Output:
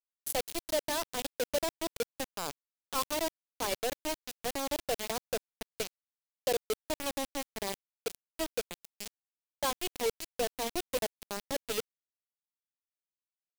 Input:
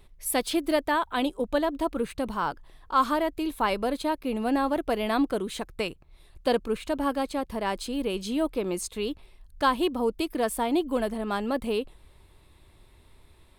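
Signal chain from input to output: resonant low shelf 320 Hz -13.5 dB, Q 1.5; bit-crush 4-bit; bell 1300 Hz -9.5 dB 1.7 oct; gain -5.5 dB

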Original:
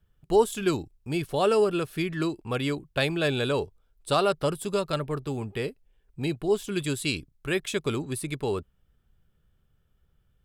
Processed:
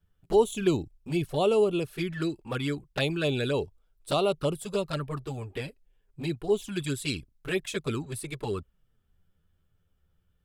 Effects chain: 0.56–1.43 low shelf 470 Hz +2.5 dB; envelope flanger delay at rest 11.7 ms, full sweep at -21.5 dBFS

